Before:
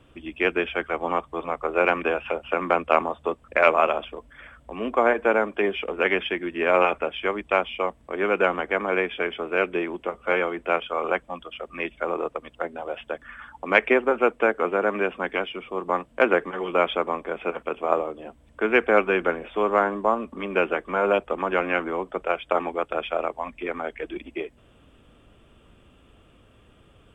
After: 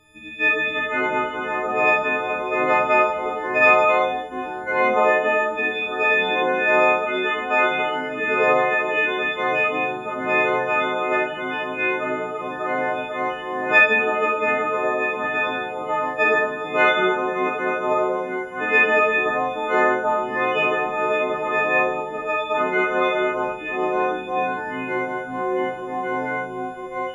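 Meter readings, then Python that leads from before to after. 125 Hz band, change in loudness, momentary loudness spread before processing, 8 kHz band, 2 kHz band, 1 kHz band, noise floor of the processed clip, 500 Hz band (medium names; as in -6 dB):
+2.0 dB, +4.0 dB, 13 LU, no reading, +7.0 dB, +5.0 dB, -31 dBFS, +2.0 dB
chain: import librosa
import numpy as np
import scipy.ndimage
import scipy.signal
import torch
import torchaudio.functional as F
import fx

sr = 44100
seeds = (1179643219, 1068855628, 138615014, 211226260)

y = fx.freq_snap(x, sr, grid_st=6)
y = fx.echo_pitch(y, sr, ms=448, semitones=-3, count=3, db_per_echo=-6.0)
y = fx.rev_schroeder(y, sr, rt60_s=0.58, comb_ms=31, drr_db=-2.0)
y = y * librosa.db_to_amplitude(-5.0)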